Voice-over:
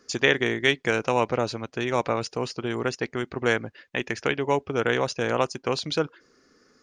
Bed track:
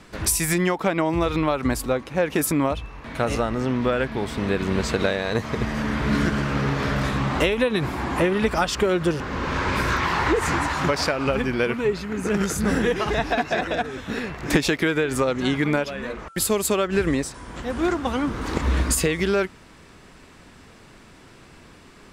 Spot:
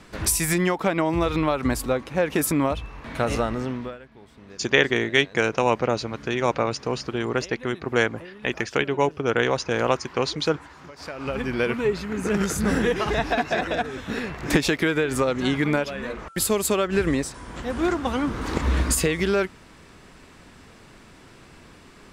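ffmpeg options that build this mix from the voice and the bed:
-filter_complex "[0:a]adelay=4500,volume=1.26[s0];[1:a]volume=11.2,afade=t=out:st=3.45:d=0.54:silence=0.0841395,afade=t=in:st=10.96:d=0.72:silence=0.0841395[s1];[s0][s1]amix=inputs=2:normalize=0"

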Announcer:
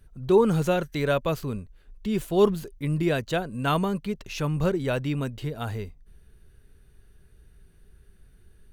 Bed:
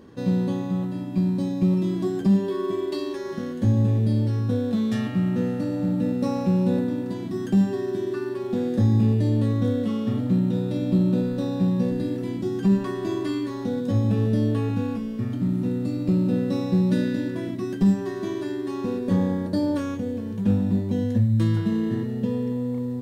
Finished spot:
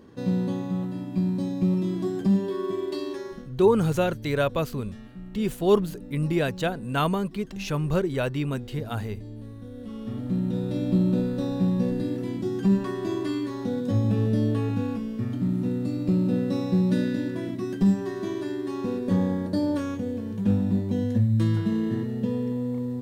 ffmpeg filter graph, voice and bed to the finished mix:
-filter_complex "[0:a]adelay=3300,volume=1[s0];[1:a]volume=5.31,afade=t=out:st=3.19:d=0.29:silence=0.158489,afade=t=in:st=9.7:d=1.09:silence=0.141254[s1];[s0][s1]amix=inputs=2:normalize=0"

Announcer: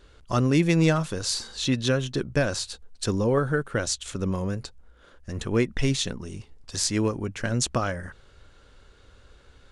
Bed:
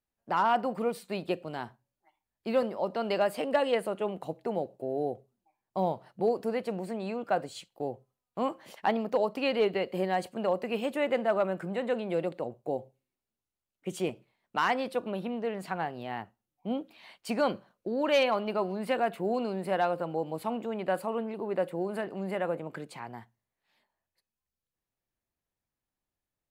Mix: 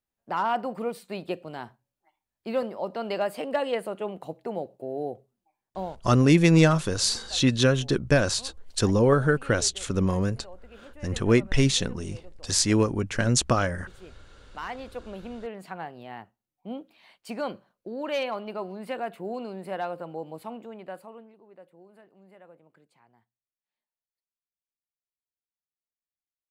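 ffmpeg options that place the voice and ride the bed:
-filter_complex "[0:a]adelay=5750,volume=1.41[s0];[1:a]volume=5.01,afade=t=out:st=5.64:d=0.43:silence=0.125893,afade=t=in:st=14.01:d=1.35:silence=0.188365,afade=t=out:st=20.29:d=1.11:silence=0.141254[s1];[s0][s1]amix=inputs=2:normalize=0"

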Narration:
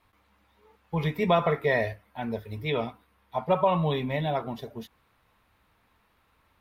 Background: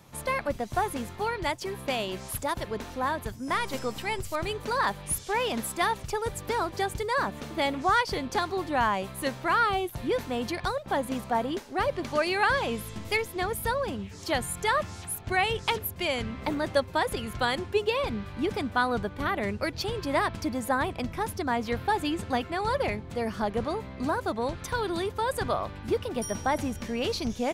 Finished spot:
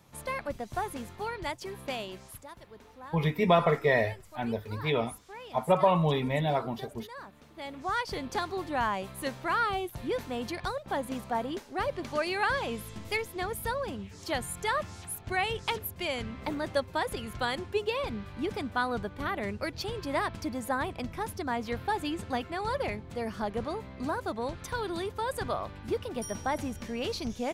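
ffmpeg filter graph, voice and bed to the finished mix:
-filter_complex "[0:a]adelay=2200,volume=1[s0];[1:a]volume=2.51,afade=t=out:st=1.93:d=0.54:silence=0.251189,afade=t=in:st=7.54:d=0.68:silence=0.211349[s1];[s0][s1]amix=inputs=2:normalize=0"

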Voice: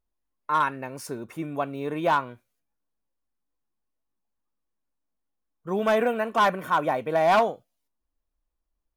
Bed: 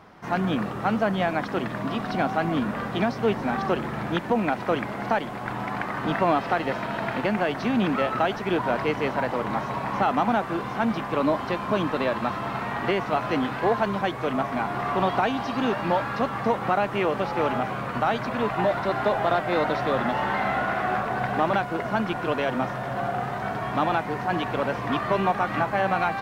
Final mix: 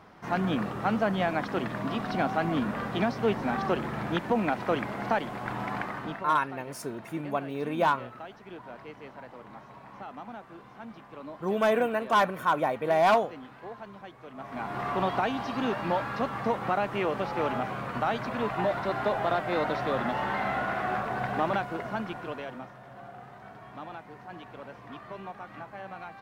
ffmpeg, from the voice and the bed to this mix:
-filter_complex "[0:a]adelay=5750,volume=0.794[s0];[1:a]volume=3.98,afade=t=out:st=5.76:d=0.51:silence=0.149624,afade=t=in:st=14.35:d=0.46:silence=0.177828,afade=t=out:st=21.48:d=1.23:silence=0.211349[s1];[s0][s1]amix=inputs=2:normalize=0"

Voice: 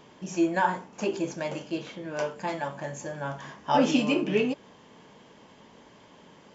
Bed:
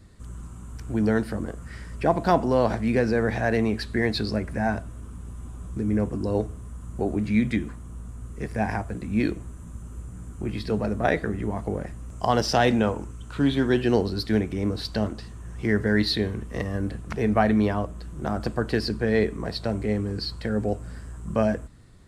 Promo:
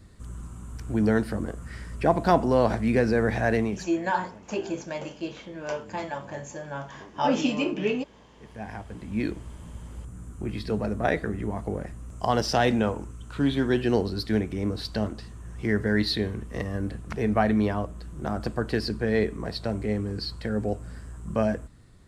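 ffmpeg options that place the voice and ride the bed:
-filter_complex "[0:a]adelay=3500,volume=0.841[s0];[1:a]volume=11.2,afade=t=out:st=3.52:d=0.4:silence=0.0707946,afade=t=in:st=8.33:d=1.2:silence=0.0891251[s1];[s0][s1]amix=inputs=2:normalize=0"

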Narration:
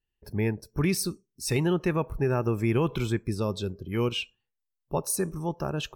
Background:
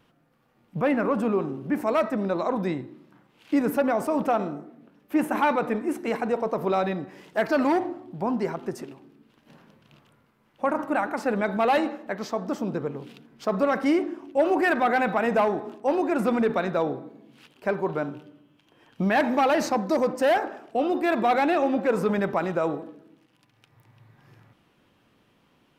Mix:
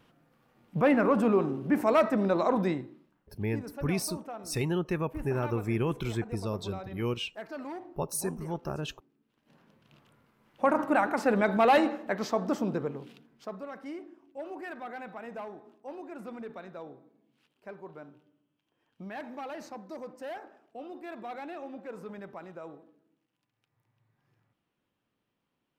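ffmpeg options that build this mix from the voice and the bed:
-filter_complex "[0:a]adelay=3050,volume=0.596[s0];[1:a]volume=7.5,afade=t=out:st=2.59:d=0.56:silence=0.133352,afade=t=in:st=9.26:d=1.32:silence=0.133352,afade=t=out:st=12.46:d=1.15:silence=0.11885[s1];[s0][s1]amix=inputs=2:normalize=0"

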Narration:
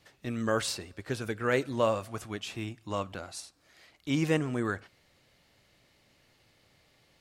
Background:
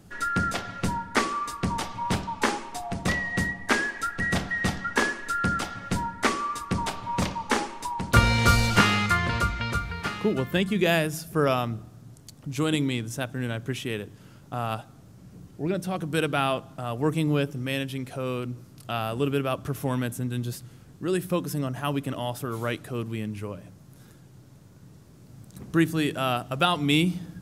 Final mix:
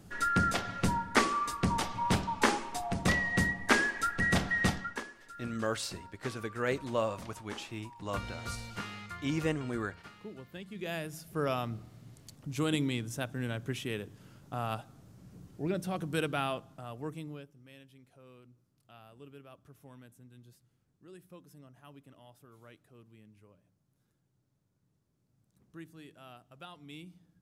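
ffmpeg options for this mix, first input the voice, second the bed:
-filter_complex "[0:a]adelay=5150,volume=0.596[s0];[1:a]volume=4.73,afade=t=out:st=4.65:d=0.38:silence=0.112202,afade=t=in:st=10.66:d=1.31:silence=0.16788,afade=t=out:st=16.01:d=1.47:silence=0.0944061[s1];[s0][s1]amix=inputs=2:normalize=0"

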